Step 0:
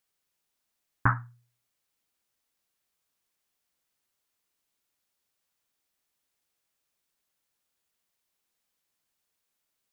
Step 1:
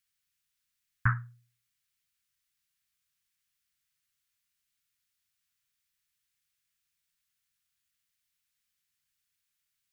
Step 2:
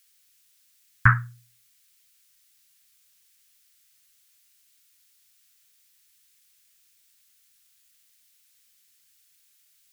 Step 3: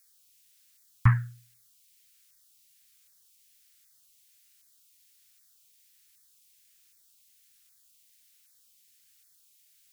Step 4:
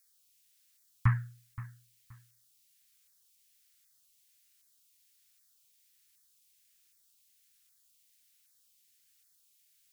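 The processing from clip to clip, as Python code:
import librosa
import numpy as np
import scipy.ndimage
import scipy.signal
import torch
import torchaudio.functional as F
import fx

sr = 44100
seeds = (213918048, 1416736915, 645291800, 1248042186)

y1 = scipy.signal.sosfilt(scipy.signal.cheby1(2, 1.0, [140.0, 1700.0], 'bandstop', fs=sr, output='sos'), x)
y2 = fx.high_shelf(y1, sr, hz=2300.0, db=11.5)
y2 = y2 * librosa.db_to_amplitude(8.0)
y3 = fx.filter_lfo_notch(y2, sr, shape='saw_down', hz=1.3, low_hz=490.0, high_hz=3200.0, q=0.92)
y4 = fx.echo_feedback(y3, sr, ms=524, feedback_pct=24, wet_db=-16.5)
y4 = y4 * librosa.db_to_amplitude(-5.5)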